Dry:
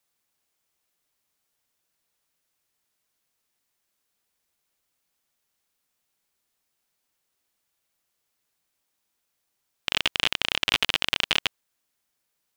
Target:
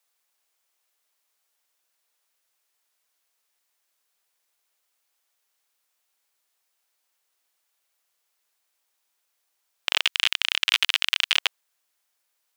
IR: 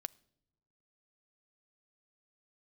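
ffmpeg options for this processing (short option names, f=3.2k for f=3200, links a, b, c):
-af "asetnsamples=n=441:p=0,asendcmd='10.03 highpass f 1400;11.37 highpass f 540',highpass=520,volume=2.5dB"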